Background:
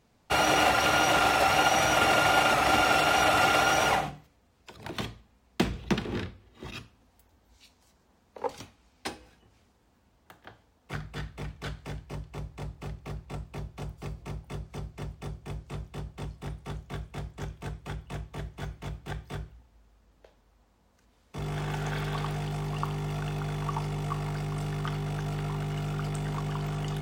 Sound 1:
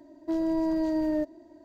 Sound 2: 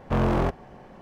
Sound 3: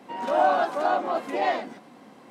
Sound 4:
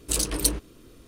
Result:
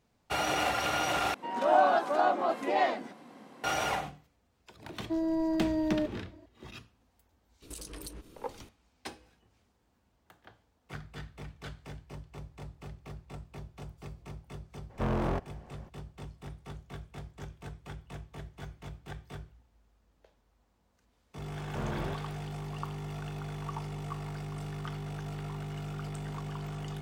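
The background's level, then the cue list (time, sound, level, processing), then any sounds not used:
background -6.5 dB
1.34 replace with 3 -2.5 dB
4.82 add 1 -3 dB
7.62 add 4 -3.5 dB + compressor 10:1, threshold -36 dBFS
14.89 add 2 -7.5 dB, fades 0.02 s
21.64 add 2 -14 dB

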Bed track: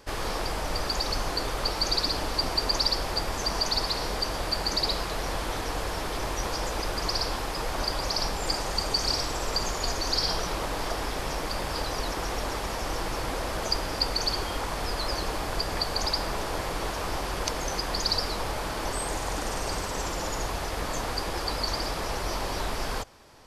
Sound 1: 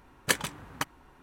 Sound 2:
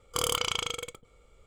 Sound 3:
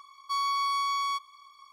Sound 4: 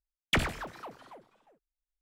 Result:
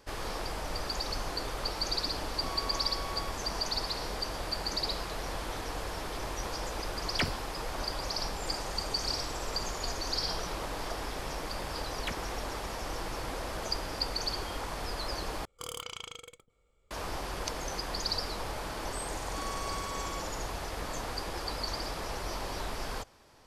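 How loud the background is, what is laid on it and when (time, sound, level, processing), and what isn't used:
bed track -6 dB
2.13 add 3 -14.5 dB
6.86 add 4 -4.5 dB + spectral noise reduction 15 dB
11.74 add 4 -9.5 dB + beating tremolo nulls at 3.5 Hz
15.45 replace with 2 -12 dB
19.04 add 3 -13 dB
not used: 1

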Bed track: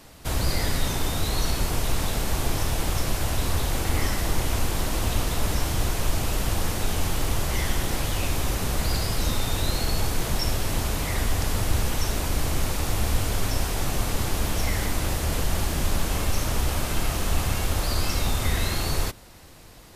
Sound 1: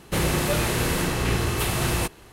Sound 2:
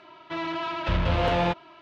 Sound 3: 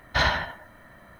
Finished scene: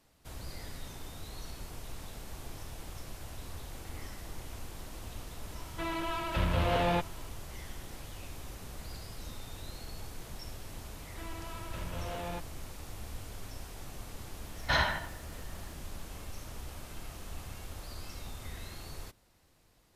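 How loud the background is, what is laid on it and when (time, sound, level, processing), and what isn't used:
bed track -19 dB
5.48 add 2 -5 dB
10.87 add 2 -16 dB
14.54 add 3 -5.5 dB
not used: 1

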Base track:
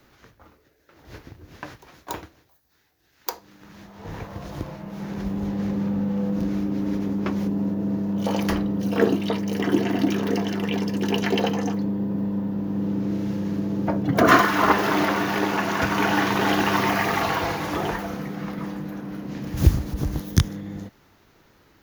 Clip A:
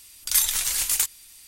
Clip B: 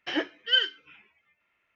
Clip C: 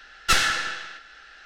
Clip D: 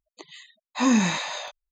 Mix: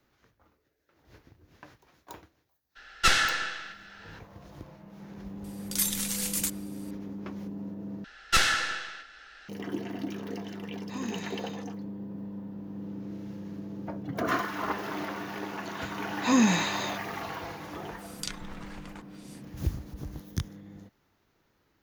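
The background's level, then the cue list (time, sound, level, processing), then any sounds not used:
base track -13.5 dB
2.75 add C -2 dB, fades 0.02 s + high shelf 11000 Hz -7 dB
5.44 add A -7.5 dB
8.04 replace with C -3 dB
10.13 add D -17 dB
15.47 add D -2 dB
17.96 add A -2.5 dB, fades 0.10 s + treble ducked by the level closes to 910 Hz, closed at -21 dBFS
not used: B

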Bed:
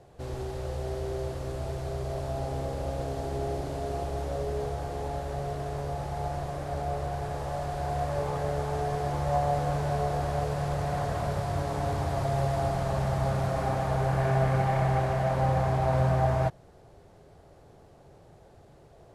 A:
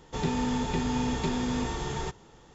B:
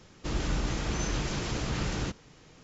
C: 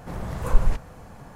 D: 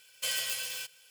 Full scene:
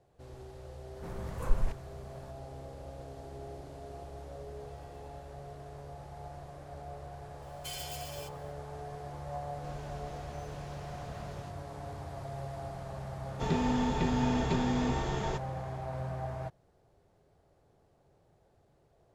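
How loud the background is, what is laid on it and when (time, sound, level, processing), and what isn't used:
bed -13 dB
0.96 add C -9.5 dB
4.45 add D -10 dB + running mean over 58 samples
7.42 add D -12 dB + comb 5.5 ms, depth 75%
9.39 add B -18 dB + slew limiter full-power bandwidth 46 Hz
13.27 add A -1 dB + high shelf 4900 Hz -8.5 dB

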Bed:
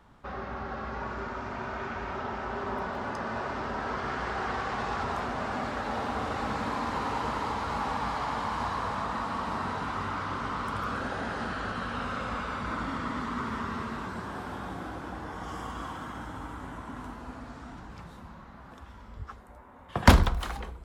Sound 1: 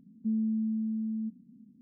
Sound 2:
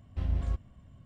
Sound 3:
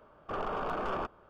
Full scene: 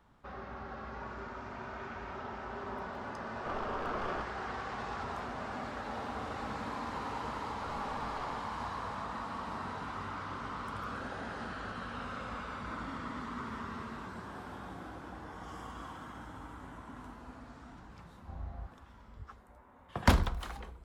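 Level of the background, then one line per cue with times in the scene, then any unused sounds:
bed -7.5 dB
3.16 add 3 -4 dB
7.31 add 3 -12 dB
18.11 add 2 -1 dB + ladder low-pass 850 Hz, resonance 80%
not used: 1

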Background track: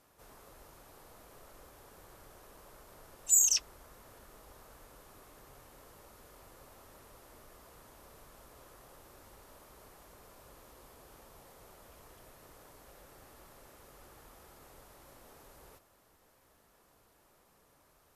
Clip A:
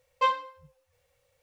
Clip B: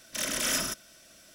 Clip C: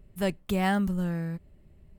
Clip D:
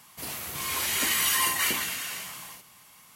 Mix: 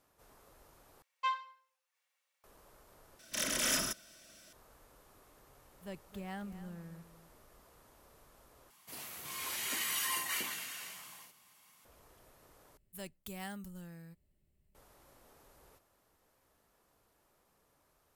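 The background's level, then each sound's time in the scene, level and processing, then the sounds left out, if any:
background track -6 dB
1.02 replace with A -8 dB + HPF 920 Hz 24 dB/oct
3.19 replace with B -3.5 dB
5.65 add C -18 dB + echo 0.265 s -13.5 dB
8.7 replace with D -10.5 dB + HPF 170 Hz 6 dB/oct
12.77 replace with C -6 dB + pre-emphasis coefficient 0.8

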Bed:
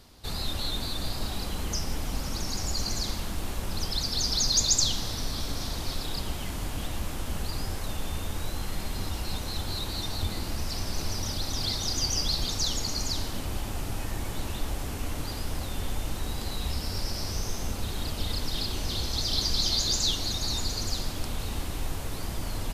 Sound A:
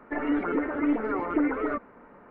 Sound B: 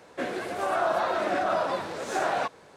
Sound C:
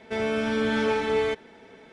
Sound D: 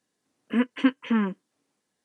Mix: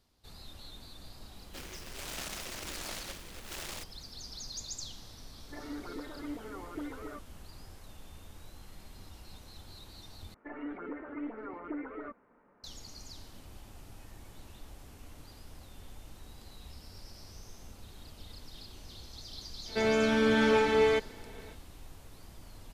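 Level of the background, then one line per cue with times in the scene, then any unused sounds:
bed -18 dB
1.36 add B -16 dB + noise-modulated delay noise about 2200 Hz, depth 0.42 ms
5.41 add A -15.5 dB
10.34 replace with A -14 dB
19.65 add C -0.5 dB, fades 0.05 s
not used: D

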